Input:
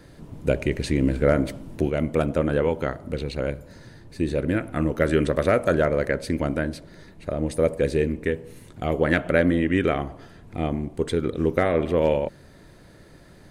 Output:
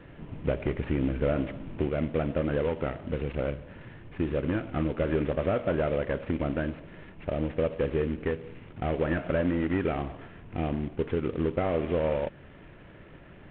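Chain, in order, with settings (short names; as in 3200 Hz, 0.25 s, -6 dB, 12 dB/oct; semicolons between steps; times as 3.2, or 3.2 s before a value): CVSD 16 kbps; compressor 2:1, threshold -27 dBFS, peak gain reduction 6.5 dB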